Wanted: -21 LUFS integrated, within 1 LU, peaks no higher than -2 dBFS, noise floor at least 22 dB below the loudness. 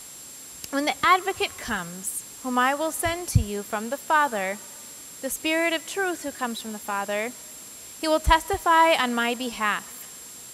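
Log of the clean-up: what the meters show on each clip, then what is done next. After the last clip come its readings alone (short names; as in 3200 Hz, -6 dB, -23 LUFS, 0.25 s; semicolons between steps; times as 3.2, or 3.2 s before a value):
steady tone 7500 Hz; tone level -43 dBFS; noise floor -42 dBFS; noise floor target -47 dBFS; loudness -24.5 LUFS; peak -4.0 dBFS; loudness target -21.0 LUFS
-> notch 7500 Hz, Q 30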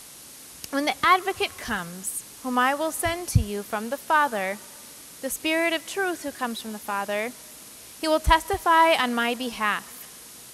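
steady tone none; noise floor -45 dBFS; noise floor target -47 dBFS
-> noise print and reduce 6 dB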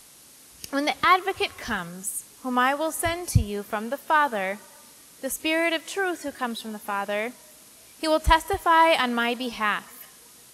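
noise floor -51 dBFS; loudness -24.5 LUFS; peak -4.0 dBFS; loudness target -21.0 LUFS
-> gain +3.5 dB; limiter -2 dBFS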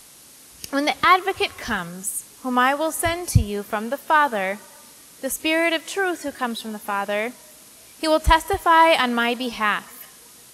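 loudness -21.0 LUFS; peak -2.0 dBFS; noise floor -47 dBFS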